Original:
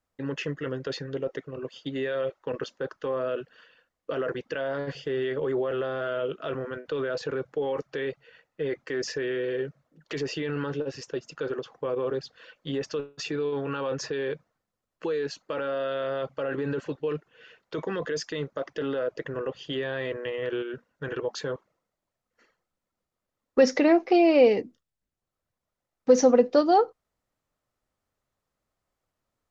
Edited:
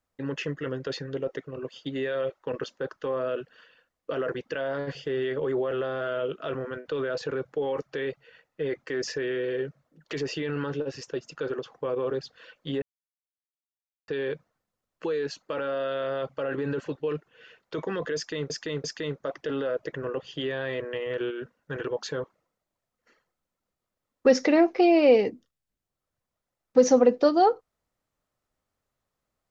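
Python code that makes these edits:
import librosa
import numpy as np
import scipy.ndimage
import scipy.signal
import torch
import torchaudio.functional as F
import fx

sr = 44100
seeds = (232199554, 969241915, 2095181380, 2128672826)

y = fx.edit(x, sr, fx.silence(start_s=12.82, length_s=1.26),
    fx.repeat(start_s=18.16, length_s=0.34, count=3), tone=tone)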